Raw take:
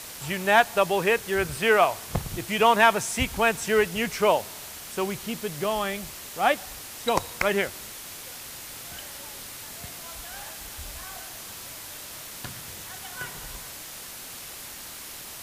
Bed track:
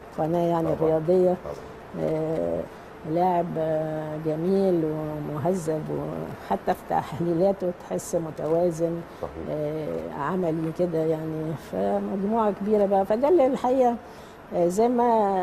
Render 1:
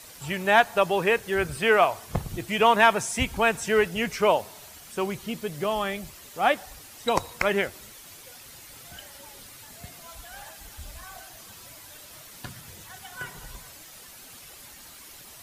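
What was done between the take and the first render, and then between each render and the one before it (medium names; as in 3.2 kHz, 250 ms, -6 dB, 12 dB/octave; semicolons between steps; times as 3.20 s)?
noise reduction 9 dB, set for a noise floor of -41 dBFS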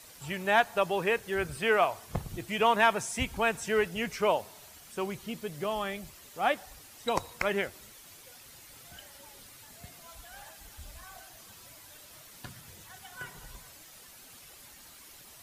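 trim -5.5 dB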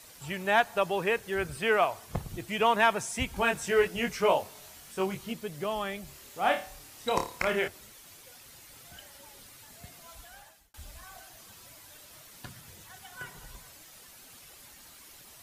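3.34–5.33 s: doubling 21 ms -3 dB; 6.05–7.68 s: flutter echo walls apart 4.8 m, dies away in 0.32 s; 10.22–10.74 s: fade out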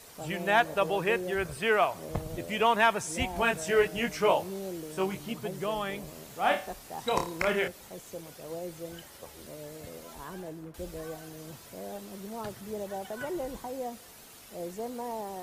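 add bed track -16 dB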